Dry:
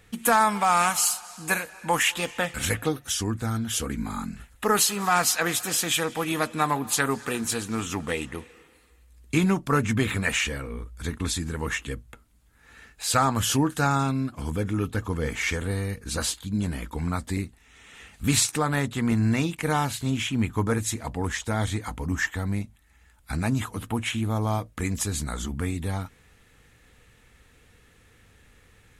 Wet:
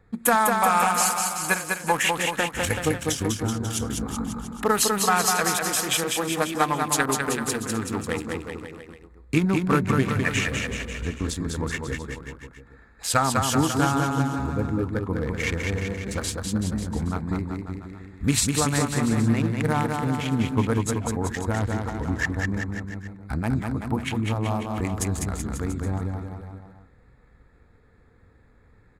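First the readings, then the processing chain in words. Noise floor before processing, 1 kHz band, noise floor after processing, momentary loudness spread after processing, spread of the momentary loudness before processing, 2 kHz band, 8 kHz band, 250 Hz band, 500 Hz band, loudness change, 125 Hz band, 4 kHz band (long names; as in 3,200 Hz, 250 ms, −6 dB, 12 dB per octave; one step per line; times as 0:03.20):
−58 dBFS, +1.5 dB, −56 dBFS, 11 LU, 10 LU, +1.0 dB, +0.5 dB, +2.5 dB, +2.5 dB, +1.5 dB, +2.0 dB, 0.0 dB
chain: adaptive Wiener filter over 15 samples
tape wow and flutter 20 cents
transient designer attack +4 dB, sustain −1 dB
on a send: bouncing-ball delay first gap 200 ms, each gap 0.9×, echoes 5
on the sum: level −1 dB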